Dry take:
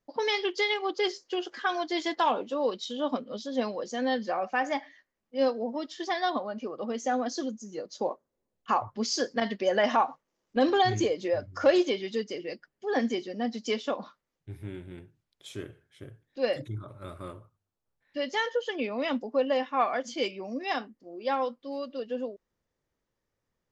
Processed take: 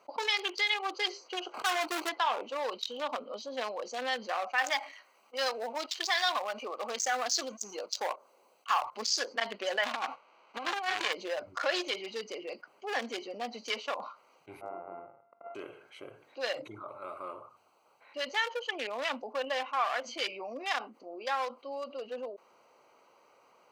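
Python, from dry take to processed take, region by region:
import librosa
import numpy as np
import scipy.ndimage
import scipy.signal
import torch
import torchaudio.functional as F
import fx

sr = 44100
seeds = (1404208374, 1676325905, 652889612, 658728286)

y = fx.chain(x, sr, fx.median_filter(points=25),
    fx.leveller(passes=3), at=(1.54, 2.09))
y = fx.chain(y, sr, fx.leveller(passes=1),
    fx.tilt_eq(slope=2.0), at=(4.58, 9.02))
y = fx.envelope_flatten(y, sr, power=0.3, at=(9.83, 11.12), fade=0.02)
y = fx.lowpass(y, sr, hz=2800.0, slope=12, at=(9.83, 11.12), fade=0.02)
y = fx.over_compress(y, sr, threshold_db=-27.0, ratio=-0.5, at=(9.83, 11.12), fade=0.02)
y = fx.chain(y, sr, fx.sample_sort(block=64),
    fx.gaussian_blur(sigma=6.3),
    fx.peak_eq(hz=65.0, db=-14.5, octaves=0.47), at=(14.61, 15.55))
y = fx.wiener(y, sr, points=25)
y = scipy.signal.sosfilt(scipy.signal.butter(2, 1200.0, 'highpass', fs=sr, output='sos'), y)
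y = fx.env_flatten(y, sr, amount_pct=50)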